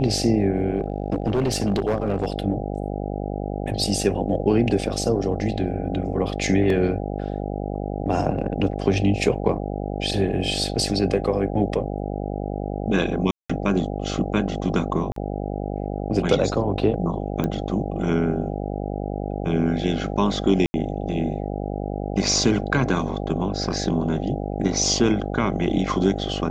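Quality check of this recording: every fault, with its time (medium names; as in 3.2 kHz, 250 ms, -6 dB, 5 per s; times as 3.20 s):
buzz 50 Hz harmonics 16 -28 dBFS
0.78–2.28 s: clipped -17 dBFS
13.31–13.49 s: dropout 185 ms
15.12–15.16 s: dropout 43 ms
17.44 s: pop -12 dBFS
20.66–20.74 s: dropout 80 ms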